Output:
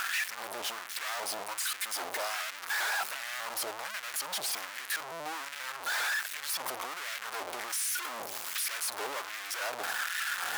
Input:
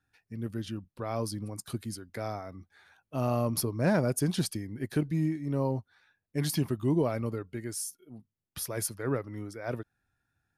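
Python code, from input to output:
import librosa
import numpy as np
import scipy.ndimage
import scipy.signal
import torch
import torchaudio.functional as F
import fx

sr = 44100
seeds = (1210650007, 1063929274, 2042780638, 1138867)

y = np.sign(x) * np.sqrt(np.mean(np.square(x)))
y = fx.peak_eq(y, sr, hz=75.0, db=7.0, octaves=2.9)
y = fx.leveller(y, sr, passes=5)
y = fx.filter_lfo_highpass(y, sr, shape='sine', hz=1.3, low_hz=690.0, high_hz=1800.0, q=1.5)
y = fx.vibrato_shape(y, sr, shape='saw_up', rate_hz=5.0, depth_cents=100.0)
y = F.gain(torch.from_numpy(y), -7.0).numpy()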